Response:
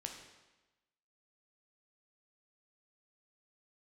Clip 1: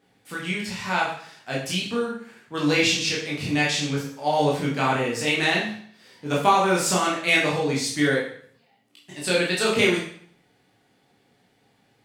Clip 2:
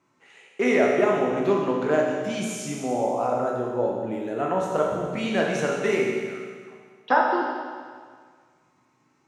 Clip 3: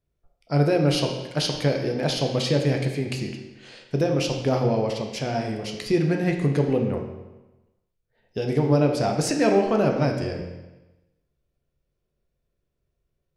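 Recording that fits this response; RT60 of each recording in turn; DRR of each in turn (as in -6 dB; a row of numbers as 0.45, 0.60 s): 3; 0.55, 1.8, 1.1 s; -5.0, -1.5, 2.5 dB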